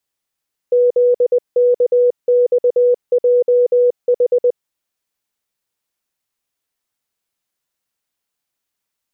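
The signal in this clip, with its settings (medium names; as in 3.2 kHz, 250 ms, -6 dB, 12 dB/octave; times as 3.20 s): Morse "ZKXJH" 20 wpm 490 Hz -9 dBFS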